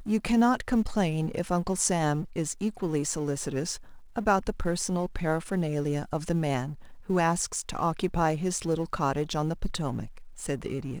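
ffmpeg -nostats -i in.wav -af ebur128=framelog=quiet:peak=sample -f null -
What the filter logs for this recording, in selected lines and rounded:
Integrated loudness:
  I:         -28.8 LUFS
  Threshold: -38.9 LUFS
Loudness range:
  LRA:         2.2 LU
  Threshold: -49.1 LUFS
  LRA low:   -29.9 LUFS
  LRA high:  -27.7 LUFS
Sample peak:
  Peak:       -8.5 dBFS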